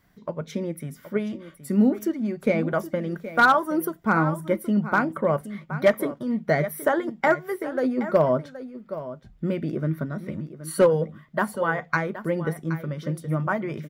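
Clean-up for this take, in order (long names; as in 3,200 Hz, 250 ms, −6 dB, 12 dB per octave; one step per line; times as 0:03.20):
clipped peaks rebuilt −10 dBFS
echo removal 772 ms −13.5 dB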